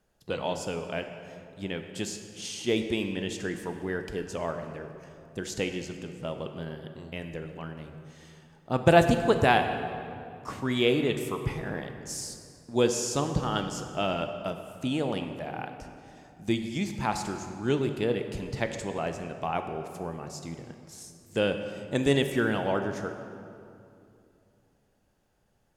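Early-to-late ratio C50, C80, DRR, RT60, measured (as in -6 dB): 7.5 dB, 8.5 dB, 6.5 dB, 2.6 s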